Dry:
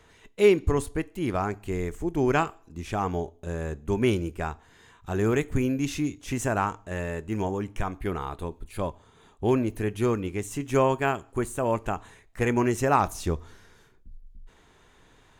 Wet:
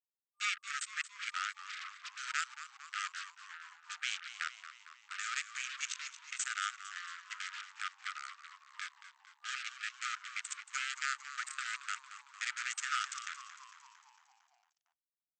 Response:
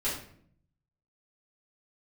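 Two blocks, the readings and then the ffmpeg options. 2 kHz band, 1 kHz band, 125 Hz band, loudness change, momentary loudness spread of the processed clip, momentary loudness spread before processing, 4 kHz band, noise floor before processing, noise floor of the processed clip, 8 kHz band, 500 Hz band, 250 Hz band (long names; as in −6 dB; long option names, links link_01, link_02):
−2.5 dB, −13.0 dB, below −40 dB, −12.0 dB, 14 LU, 11 LU, +1.5 dB, −58 dBFS, below −85 dBFS, −1.0 dB, below −40 dB, below −40 dB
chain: -filter_complex "[0:a]aemphasis=mode=production:type=50kf,aeval=exprs='0.501*(cos(1*acos(clip(val(0)/0.501,-1,1)))-cos(1*PI/2))+0.0355*(cos(6*acos(clip(val(0)/0.501,-1,1)))-cos(6*PI/2))+0.0562*(cos(7*acos(clip(val(0)/0.501,-1,1)))-cos(7*PI/2))':channel_layout=same,anlmdn=1.58,areverse,acompressor=threshold=-34dB:ratio=10,areverse,alimiter=level_in=6dB:limit=-24dB:level=0:latency=1:release=102,volume=-6dB,acrusher=bits=7:mix=0:aa=0.5,afftfilt=real='re*between(b*sr/4096,1200,8300)':imag='im*between(b*sr/4096,1200,8300)':win_size=4096:overlap=0.75,asplit=8[link_01][link_02][link_03][link_04][link_05][link_06][link_07][link_08];[link_02]adelay=227,afreqshift=-75,volume=-12.5dB[link_09];[link_03]adelay=454,afreqshift=-150,volume=-17.1dB[link_10];[link_04]adelay=681,afreqshift=-225,volume=-21.7dB[link_11];[link_05]adelay=908,afreqshift=-300,volume=-26.2dB[link_12];[link_06]adelay=1135,afreqshift=-375,volume=-30.8dB[link_13];[link_07]adelay=1362,afreqshift=-450,volume=-35.4dB[link_14];[link_08]adelay=1589,afreqshift=-525,volume=-40dB[link_15];[link_01][link_09][link_10][link_11][link_12][link_13][link_14][link_15]amix=inputs=8:normalize=0,volume=13.5dB"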